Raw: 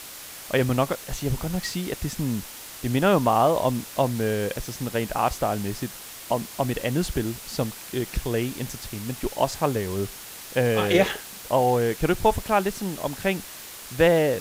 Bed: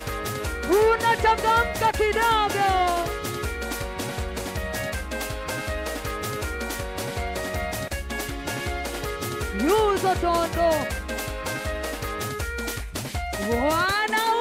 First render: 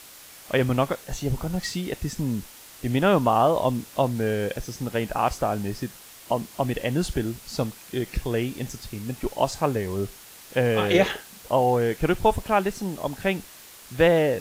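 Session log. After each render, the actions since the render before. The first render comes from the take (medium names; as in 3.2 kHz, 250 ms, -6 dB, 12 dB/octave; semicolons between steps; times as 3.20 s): noise print and reduce 6 dB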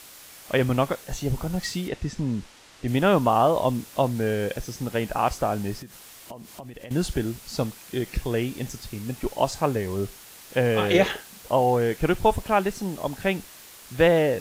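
1.88–2.88 s: distance through air 76 m; 5.81–6.91 s: compression, threshold -37 dBFS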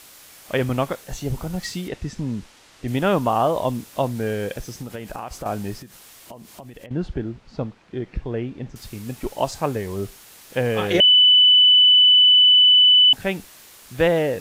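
4.70–5.46 s: compression 12:1, threshold -27 dBFS; 6.86–8.76 s: tape spacing loss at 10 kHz 32 dB; 11.00–13.13 s: bleep 2.99 kHz -9.5 dBFS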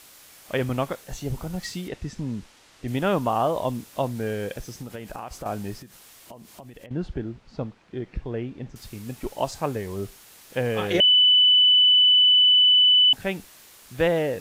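trim -3.5 dB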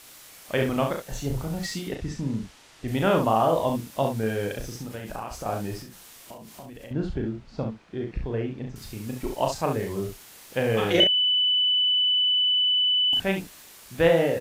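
early reflections 36 ms -5 dB, 68 ms -7 dB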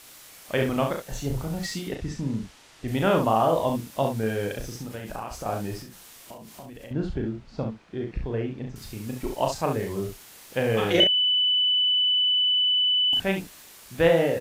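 no audible change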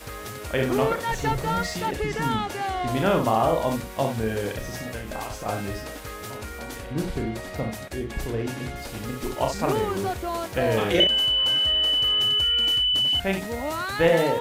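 add bed -7 dB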